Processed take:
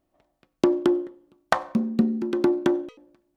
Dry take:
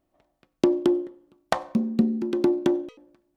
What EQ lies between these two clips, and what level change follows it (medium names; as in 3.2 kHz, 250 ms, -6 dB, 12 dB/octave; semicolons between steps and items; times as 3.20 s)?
dynamic bell 1.4 kHz, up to +7 dB, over -45 dBFS, Q 1.3; 0.0 dB